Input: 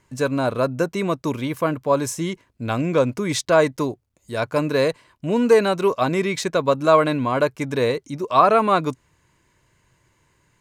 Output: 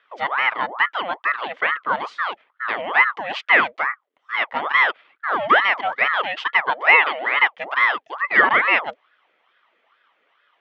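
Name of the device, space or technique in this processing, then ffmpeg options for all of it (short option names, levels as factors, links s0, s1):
voice changer toy: -filter_complex "[0:a]aeval=exprs='val(0)*sin(2*PI*960*n/s+960*0.65/2.3*sin(2*PI*2.3*n/s))':c=same,highpass=460,equalizer=f=1200:t=q:w=4:g=5,equalizer=f=2000:t=q:w=4:g=8,equalizer=f=3200:t=q:w=4:g=7,lowpass=f=3500:w=0.5412,lowpass=f=3500:w=1.3066,asettb=1/sr,asplit=3[s0][s1][s2];[s0]atrim=end=6.704[s3];[s1]atrim=start=6.7:end=7.37,asetpts=PTS-STARTPTS,afade=t=in:d=0.004:c=qsin,afade=t=out:st=0.666:d=0.004:c=qsin,highpass=f=280:w=0.5412,highpass=f=280:w=1.3066[s4];[s2]atrim=start=7.366[s5];[s3][s4]acrossfade=d=0.004:c1=hsin:c2=qsin[s6];[s6][s5]acrossfade=d=0.004:c1=qsin:c2=hsin"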